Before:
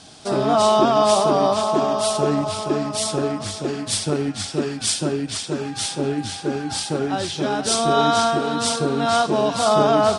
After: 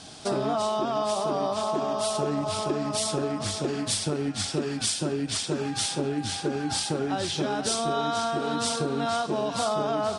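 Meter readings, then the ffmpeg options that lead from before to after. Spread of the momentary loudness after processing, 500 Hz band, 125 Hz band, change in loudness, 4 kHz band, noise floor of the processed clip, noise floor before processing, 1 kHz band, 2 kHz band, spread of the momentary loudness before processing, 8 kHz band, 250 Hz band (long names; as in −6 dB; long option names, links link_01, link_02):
2 LU, −8.0 dB, −5.5 dB, −7.0 dB, −5.5 dB, −35 dBFS, −34 dBFS, −8.5 dB, −6.0 dB, 9 LU, −5.0 dB, −6.5 dB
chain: -af "acompressor=threshold=-24dB:ratio=6"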